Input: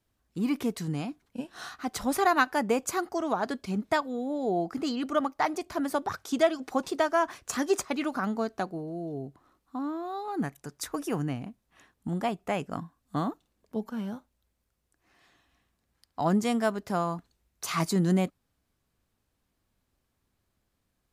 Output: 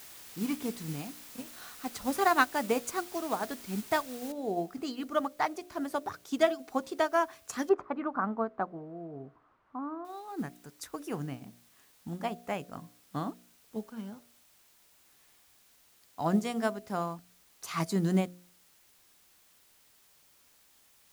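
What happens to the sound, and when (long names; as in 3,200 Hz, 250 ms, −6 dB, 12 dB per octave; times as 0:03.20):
0:04.32: noise floor change −41 dB −55 dB
0:07.69–0:10.05: low-pass with resonance 1,200 Hz, resonance Q 2
whole clip: hum removal 59.59 Hz, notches 12; expander for the loud parts 1.5 to 1, over −36 dBFS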